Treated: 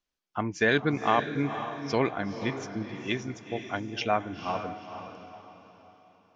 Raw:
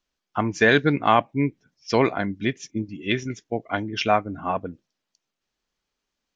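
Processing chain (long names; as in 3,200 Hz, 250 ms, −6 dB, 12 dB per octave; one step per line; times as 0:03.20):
feedback delay with all-pass diffusion 481 ms, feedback 40%, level −9 dB
level −6.5 dB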